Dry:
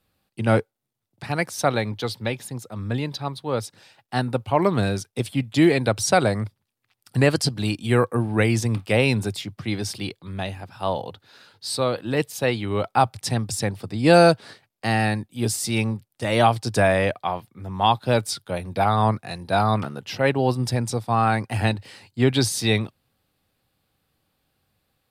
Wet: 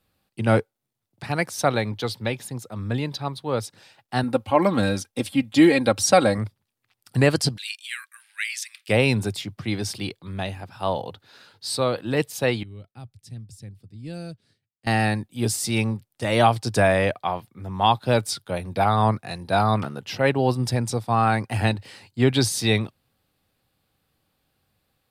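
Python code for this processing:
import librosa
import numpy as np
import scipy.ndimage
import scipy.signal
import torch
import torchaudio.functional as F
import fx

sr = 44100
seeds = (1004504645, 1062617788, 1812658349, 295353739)

y = fx.comb(x, sr, ms=3.7, depth=0.65, at=(4.23, 6.38))
y = fx.steep_highpass(y, sr, hz=1800.0, slope=36, at=(7.56, 8.88), fade=0.02)
y = fx.tone_stack(y, sr, knobs='10-0-1', at=(12.63, 14.87))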